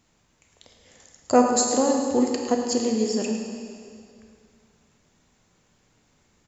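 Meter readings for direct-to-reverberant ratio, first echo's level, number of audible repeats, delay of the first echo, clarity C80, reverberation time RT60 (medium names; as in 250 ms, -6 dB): 1.5 dB, -11.0 dB, 1, 108 ms, 4.0 dB, 2.3 s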